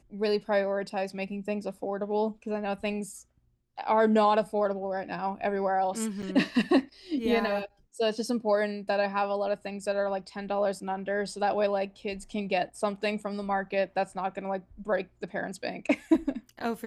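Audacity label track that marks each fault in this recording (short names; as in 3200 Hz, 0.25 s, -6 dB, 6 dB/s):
6.220000	6.230000	gap 6.7 ms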